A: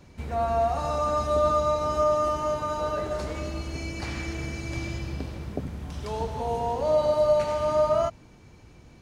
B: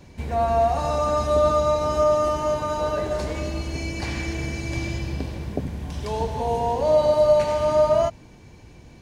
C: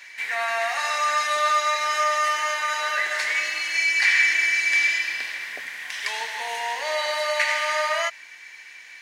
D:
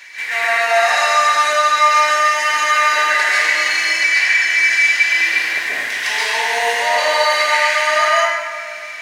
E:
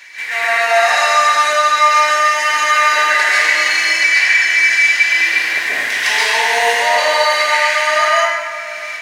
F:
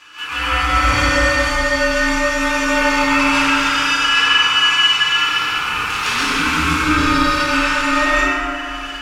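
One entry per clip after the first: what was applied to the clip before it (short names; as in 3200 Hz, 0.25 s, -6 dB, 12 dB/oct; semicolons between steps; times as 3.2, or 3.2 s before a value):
notch 1300 Hz, Q 6; gain +4.5 dB
resonant high-pass 1900 Hz, resonance Q 5.7; gain +7.5 dB
compressor, threshold -24 dBFS, peak gain reduction 9.5 dB; plate-style reverb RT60 1.7 s, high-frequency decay 0.5×, pre-delay 0.115 s, DRR -8 dB; gain +5 dB
AGC gain up to 7 dB
ring modulator 630 Hz; FDN reverb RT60 1.8 s, low-frequency decay 1.55×, high-frequency decay 0.3×, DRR -2.5 dB; gain -3.5 dB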